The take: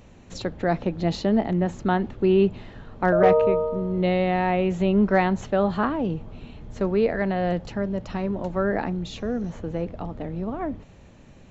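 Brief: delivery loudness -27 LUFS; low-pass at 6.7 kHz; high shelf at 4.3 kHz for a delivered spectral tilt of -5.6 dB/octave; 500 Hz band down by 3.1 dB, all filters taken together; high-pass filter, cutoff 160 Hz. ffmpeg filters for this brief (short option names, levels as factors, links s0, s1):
-af "highpass=160,lowpass=6700,equalizer=f=500:t=o:g=-4,highshelf=f=4300:g=3.5,volume=0.944"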